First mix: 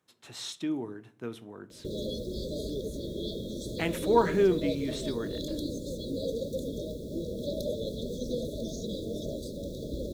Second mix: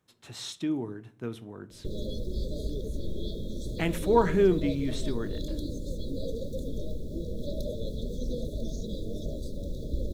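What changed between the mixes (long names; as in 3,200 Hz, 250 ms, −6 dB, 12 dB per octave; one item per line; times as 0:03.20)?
background −4.5 dB
master: remove high-pass filter 230 Hz 6 dB per octave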